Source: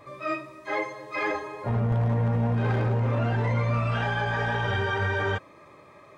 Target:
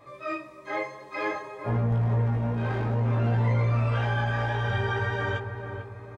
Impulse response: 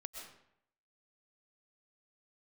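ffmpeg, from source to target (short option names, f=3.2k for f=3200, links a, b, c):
-filter_complex "[0:a]flanger=delay=17:depth=3.7:speed=0.58,asplit=2[a][b];[b]adelay=447,lowpass=f=1k:p=1,volume=-6dB,asplit=2[c][d];[d]adelay=447,lowpass=f=1k:p=1,volume=0.52,asplit=2[e][f];[f]adelay=447,lowpass=f=1k:p=1,volume=0.52,asplit=2[g][h];[h]adelay=447,lowpass=f=1k:p=1,volume=0.52,asplit=2[i][j];[j]adelay=447,lowpass=f=1k:p=1,volume=0.52,asplit=2[k][l];[l]adelay=447,lowpass=f=1k:p=1,volume=0.52[m];[a][c][e][g][i][k][m]amix=inputs=7:normalize=0"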